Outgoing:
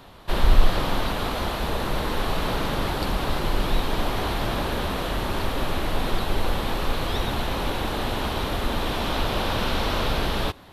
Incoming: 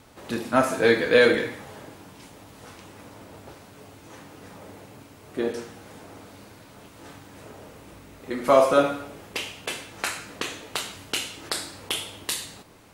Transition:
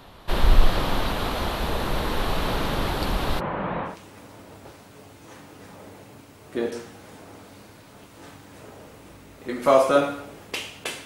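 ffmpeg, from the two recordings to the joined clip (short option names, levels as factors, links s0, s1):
-filter_complex "[0:a]asplit=3[s0][s1][s2];[s0]afade=t=out:st=3.39:d=0.02[s3];[s1]highpass=140,equalizer=f=180:t=q:w=4:g=5,equalizer=f=260:t=q:w=4:g=-4,equalizer=f=380:t=q:w=4:g=-6,equalizer=f=550:t=q:w=4:g=4,equalizer=f=1000:t=q:w=4:g=3,lowpass=f=2100:w=0.5412,lowpass=f=2100:w=1.3066,afade=t=in:st=3.39:d=0.02,afade=t=out:st=3.97:d=0.02[s4];[s2]afade=t=in:st=3.97:d=0.02[s5];[s3][s4][s5]amix=inputs=3:normalize=0,apad=whole_dur=11.05,atrim=end=11.05,atrim=end=3.97,asetpts=PTS-STARTPTS[s6];[1:a]atrim=start=2.65:end=9.87,asetpts=PTS-STARTPTS[s7];[s6][s7]acrossfade=d=0.14:c1=tri:c2=tri"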